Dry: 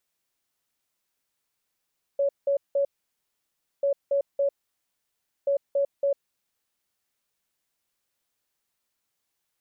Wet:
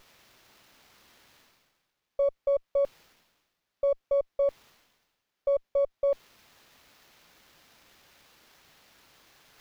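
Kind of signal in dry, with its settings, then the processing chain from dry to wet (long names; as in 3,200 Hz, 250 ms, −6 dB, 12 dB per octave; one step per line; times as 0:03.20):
beeps in groups sine 560 Hz, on 0.10 s, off 0.18 s, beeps 3, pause 0.98 s, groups 3, −20 dBFS
reversed playback
upward compression, threshold −37 dBFS
reversed playback
windowed peak hold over 5 samples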